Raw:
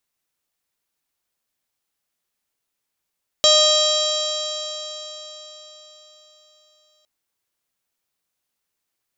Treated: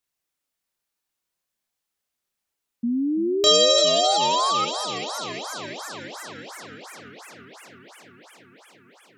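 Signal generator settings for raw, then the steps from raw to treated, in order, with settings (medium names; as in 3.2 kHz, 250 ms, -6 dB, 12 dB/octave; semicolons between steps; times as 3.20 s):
stretched partials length 3.61 s, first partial 610 Hz, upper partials -9/-19/-18.5/0/1/-7/-5/-11/-5 dB, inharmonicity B 0.004, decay 4.32 s, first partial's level -16 dB
chorus voices 2, 0.22 Hz, delay 29 ms, depth 3.2 ms; painted sound rise, 2.83–4.65 s, 230–1300 Hz -23 dBFS; modulated delay 342 ms, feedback 79%, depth 210 cents, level -13 dB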